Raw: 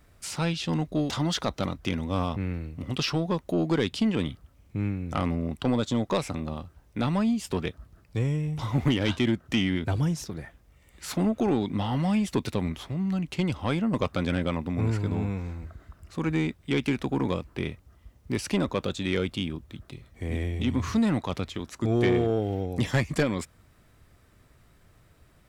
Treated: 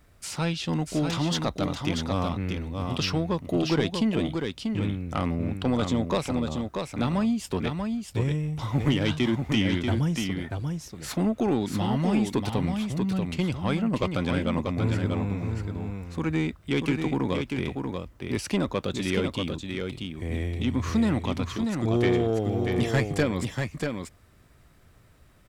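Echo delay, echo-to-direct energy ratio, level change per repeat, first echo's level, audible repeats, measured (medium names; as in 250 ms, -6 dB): 638 ms, -5.0 dB, no regular repeats, -5.0 dB, 1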